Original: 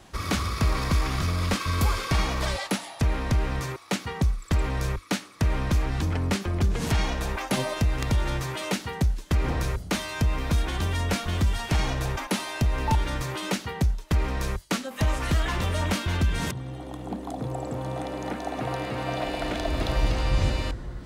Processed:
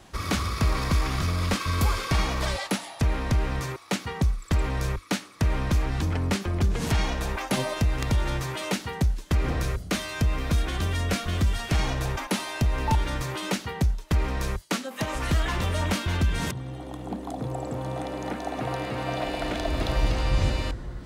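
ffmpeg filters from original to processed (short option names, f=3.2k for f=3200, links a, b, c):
-filter_complex "[0:a]asettb=1/sr,asplit=3[a][b][c];[a]atrim=end=9.404[d];[b]atrim=start=9.4:end=11.76,asetpts=PTS-STARTPTS,afade=t=in:d=0.004:c=qsin,afade=t=out:st=2.356:d=0.004:c=qsin,bandreject=f=890:w=6.8[e];[c]atrim=start=11.756[f];[d][e]acrossfade=d=0.004:c1=hsin:c2=qsin[g];[g][f]acrossfade=d=0.004:c1=qsin:c2=hsin,asettb=1/sr,asplit=3[h][i][j];[h]atrim=end=14.624[k];[i]atrim=start=14.62:end=15.15,asetpts=PTS-STARTPTS,afade=t=in:d=0.004:c=qsin,afade=t=out:st=0.526:d=0.004:c=qsin,highpass=160[l];[j]atrim=start=15.146[m];[k][l]acrossfade=d=0.004:c1=hsin:c2=qsin[n];[n][m]acrossfade=d=0.004:c1=qsin:c2=hsin"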